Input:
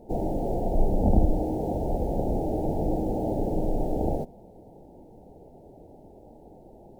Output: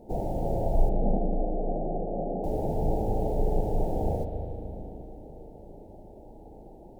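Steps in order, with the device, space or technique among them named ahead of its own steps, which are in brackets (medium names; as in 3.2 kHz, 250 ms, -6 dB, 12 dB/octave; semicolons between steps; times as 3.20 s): 0.89–2.44 s: elliptic band-pass 170–740 Hz; dub delay into a spring reverb (filtered feedback delay 298 ms, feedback 65%, low-pass 840 Hz, level -10.5 dB; spring tank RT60 3.5 s, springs 37 ms, chirp 25 ms, DRR 4 dB); dynamic bell 290 Hz, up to -6 dB, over -41 dBFS, Q 1.4; trim -1 dB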